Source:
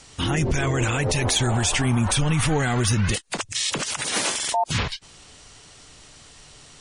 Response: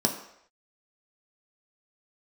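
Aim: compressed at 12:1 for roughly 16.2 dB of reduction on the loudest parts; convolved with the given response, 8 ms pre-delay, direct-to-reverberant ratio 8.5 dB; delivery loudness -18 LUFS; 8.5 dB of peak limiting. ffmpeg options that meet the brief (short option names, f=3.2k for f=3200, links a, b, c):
-filter_complex "[0:a]acompressor=threshold=-34dB:ratio=12,alimiter=level_in=8.5dB:limit=-24dB:level=0:latency=1,volume=-8.5dB,asplit=2[a][b];[1:a]atrim=start_sample=2205,adelay=8[c];[b][c]afir=irnorm=-1:irlink=0,volume=-18.5dB[d];[a][d]amix=inputs=2:normalize=0,volume=22.5dB"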